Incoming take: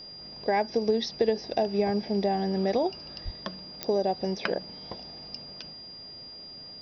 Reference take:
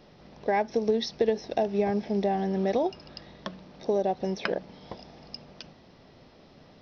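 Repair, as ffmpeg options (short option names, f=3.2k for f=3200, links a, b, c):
-filter_complex "[0:a]adeclick=t=4,bandreject=f=4.8k:w=30,asplit=3[a][b][c];[a]afade=t=out:st=3.24:d=0.02[d];[b]highpass=f=140:w=0.5412,highpass=f=140:w=1.3066,afade=t=in:st=3.24:d=0.02,afade=t=out:st=3.36:d=0.02[e];[c]afade=t=in:st=3.36:d=0.02[f];[d][e][f]amix=inputs=3:normalize=0"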